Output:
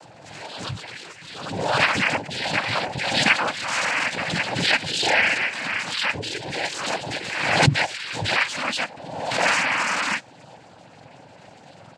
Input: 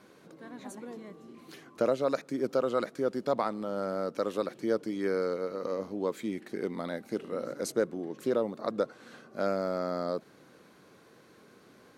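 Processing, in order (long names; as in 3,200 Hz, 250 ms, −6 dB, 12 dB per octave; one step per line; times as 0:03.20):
frequency axis turned over on the octave scale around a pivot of 970 Hz
comb filter 1.9 ms, depth 95%
hollow resonant body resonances 240/620/890 Hz, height 11 dB, ringing for 90 ms
cochlear-implant simulation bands 8
background raised ahead of every attack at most 43 dB per second
level +7.5 dB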